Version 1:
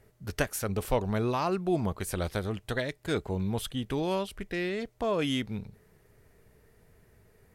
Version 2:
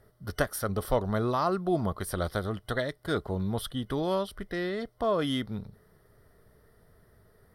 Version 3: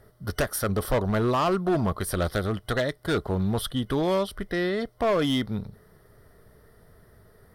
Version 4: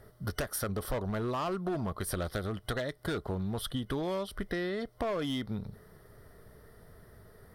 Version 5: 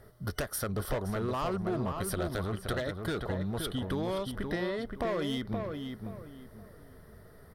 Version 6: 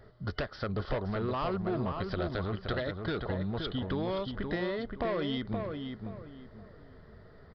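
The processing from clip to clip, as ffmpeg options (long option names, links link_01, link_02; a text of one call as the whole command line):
ffmpeg -i in.wav -af "superequalizer=8b=1.41:10b=1.78:12b=0.282:15b=0.282" out.wav
ffmpeg -i in.wav -af "asoftclip=type=hard:threshold=-24dB,volume=5.5dB" out.wav
ffmpeg -i in.wav -af "acompressor=threshold=-31dB:ratio=6" out.wav
ffmpeg -i in.wav -filter_complex "[0:a]asplit=2[link_01][link_02];[link_02]adelay=522,lowpass=frequency=2300:poles=1,volume=-5dB,asplit=2[link_03][link_04];[link_04]adelay=522,lowpass=frequency=2300:poles=1,volume=0.29,asplit=2[link_05][link_06];[link_06]adelay=522,lowpass=frequency=2300:poles=1,volume=0.29,asplit=2[link_07][link_08];[link_08]adelay=522,lowpass=frequency=2300:poles=1,volume=0.29[link_09];[link_01][link_03][link_05][link_07][link_09]amix=inputs=5:normalize=0" out.wav
ffmpeg -i in.wav -af "aresample=11025,aresample=44100" out.wav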